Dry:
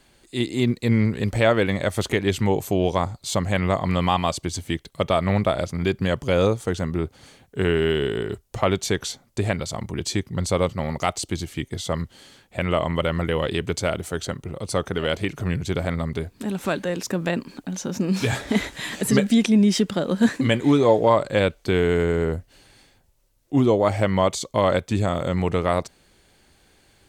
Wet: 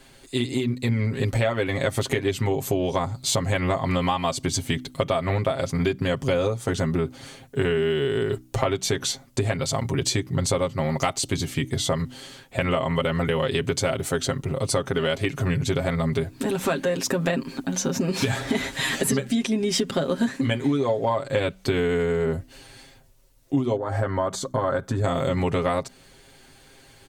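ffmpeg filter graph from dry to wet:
-filter_complex "[0:a]asettb=1/sr,asplit=3[a][b][c];[a]atrim=end=23.764[d];[b]atrim=start=23.76:end=25.04,asetpts=PTS-STARTPTS,afade=t=in:d=0.004:c=qsin,afade=t=out:st=1.276:d=0.004:c=qsin,acompressor=threshold=-26dB:ratio=3:attack=3.2:release=140:knee=1:detection=peak,highshelf=f=1.9k:t=q:w=3:g=-6.5[e];[c]atrim=start=25.036[f];[d][e]acrossfade=d=0.004:c1=hsin:c2=qsin[g];[g][f]acrossfade=d=0.004:c1=qsin:c2=hsin,aecho=1:1:7.5:0.73,acompressor=threshold=-24dB:ratio=10,bandreject=f=63.05:t=h:w=4,bandreject=f=126.1:t=h:w=4,bandreject=f=189.15:t=h:w=4,bandreject=f=252.2:t=h:w=4,bandreject=f=315.25:t=h:w=4,volume=4.5dB"

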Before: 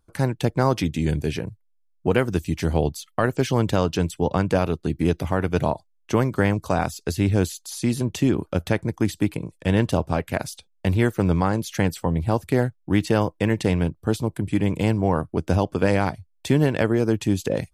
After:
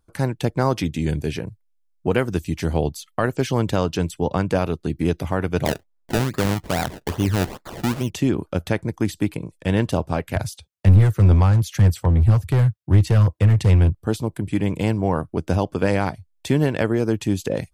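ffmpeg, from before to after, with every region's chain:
-filter_complex "[0:a]asettb=1/sr,asplit=3[a][b][c];[a]atrim=end=5.654[d];[b]atrim=start=5.65:end=8.1,asetpts=PTS-STARTPTS,afade=t=in:d=0.004:c=qsin,afade=t=out:st=2.446:d=0.004:c=qsin,acrusher=samples=28:mix=1:aa=0.000001:lfo=1:lforange=28:lforate=2.4,asoftclip=type=hard:threshold=-11dB[e];[c]atrim=start=8.096[f];[d][e]acrossfade=d=0.004:c1=hsin:c2=qsin[g];[g][f]acrossfade=d=0.004:c1=qsin:c2=hsin,asettb=1/sr,asplit=3[h][i][j];[h]atrim=end=10.354[k];[i]atrim=start=10.35:end=13.95,asetpts=PTS-STARTPTS,afade=t=in:d=0.004:c=qsin,afade=t=out:st=3.596:d=0.004:c=qsin,highpass=f=58:w=0.5412,highpass=f=58:w=1.3066,lowshelf=f=150:t=q:w=1.5:g=11,aeval=exprs='clip(val(0),-1,0.237)':c=same[l];[j]atrim=start=13.946[m];[k][l]acrossfade=d=0.004:c1=hsin:c2=qsin[n];[n][m]acrossfade=d=0.004:c1=qsin:c2=hsin"

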